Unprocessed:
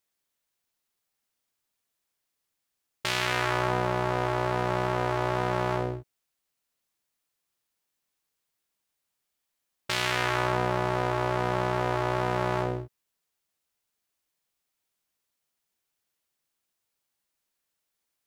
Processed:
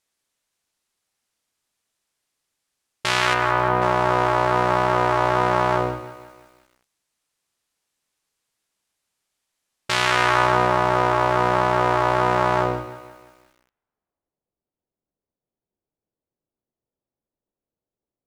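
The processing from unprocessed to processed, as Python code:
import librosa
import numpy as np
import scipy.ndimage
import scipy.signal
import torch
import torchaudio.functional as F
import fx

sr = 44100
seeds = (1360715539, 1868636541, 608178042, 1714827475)

y = fx.dynamic_eq(x, sr, hz=1100.0, q=0.99, threshold_db=-38.0, ratio=4.0, max_db=6)
y = fx.filter_sweep_lowpass(y, sr, from_hz=10000.0, to_hz=490.0, start_s=12.54, end_s=14.46, q=0.92)
y = fx.air_absorb(y, sr, metres=400.0, at=(3.34, 3.82))
y = y + 10.0 ** (-18.0 / 20.0) * np.pad(y, (int(150 * sr / 1000.0), 0))[:len(y)]
y = fx.echo_crushed(y, sr, ms=175, feedback_pct=55, bits=8, wet_db=-15.0)
y = y * 10.0 ** (5.0 / 20.0)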